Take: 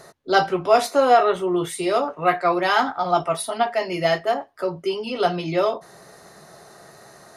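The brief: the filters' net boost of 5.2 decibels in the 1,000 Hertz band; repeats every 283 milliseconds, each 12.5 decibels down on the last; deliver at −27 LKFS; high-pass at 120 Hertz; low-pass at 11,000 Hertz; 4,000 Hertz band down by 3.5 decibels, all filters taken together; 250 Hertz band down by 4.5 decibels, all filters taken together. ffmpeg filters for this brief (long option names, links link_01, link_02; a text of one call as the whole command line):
ffmpeg -i in.wav -af "highpass=120,lowpass=11000,equalizer=frequency=250:width_type=o:gain=-9,equalizer=frequency=1000:width_type=o:gain=9,equalizer=frequency=4000:width_type=o:gain=-5.5,aecho=1:1:283|566|849:0.237|0.0569|0.0137,volume=-9dB" out.wav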